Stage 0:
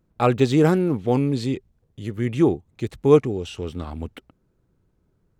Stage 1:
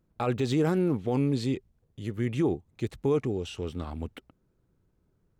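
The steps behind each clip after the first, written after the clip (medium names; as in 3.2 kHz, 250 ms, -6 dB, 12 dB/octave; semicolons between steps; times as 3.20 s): peak limiter -13.5 dBFS, peak gain reduction 10 dB; trim -4 dB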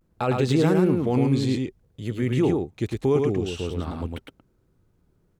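vibrato 0.56 Hz 55 cents; delay 108 ms -3.5 dB; trim +4 dB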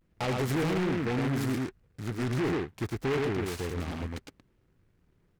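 saturation -21.5 dBFS, distortion -10 dB; delay time shaken by noise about 1.4 kHz, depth 0.13 ms; trim -3 dB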